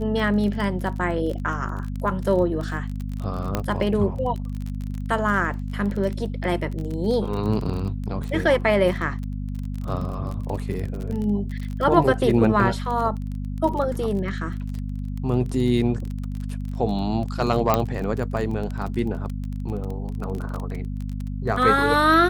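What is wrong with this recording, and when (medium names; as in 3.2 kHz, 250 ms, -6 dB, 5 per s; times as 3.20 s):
crackle 25 per s -28 dBFS
hum 50 Hz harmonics 5 -29 dBFS
3.55 s: pop -9 dBFS
17.74 s: pop -5 dBFS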